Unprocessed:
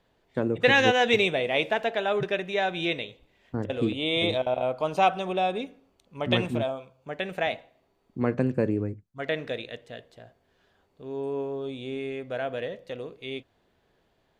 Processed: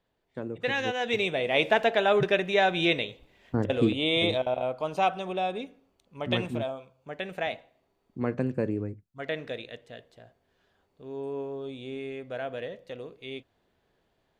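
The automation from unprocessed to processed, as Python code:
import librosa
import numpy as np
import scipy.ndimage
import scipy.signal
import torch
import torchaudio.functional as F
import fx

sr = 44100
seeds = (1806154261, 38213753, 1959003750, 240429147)

y = fx.gain(x, sr, db=fx.line((0.93, -9.0), (1.73, 3.5), (3.72, 3.5), (4.79, -3.5)))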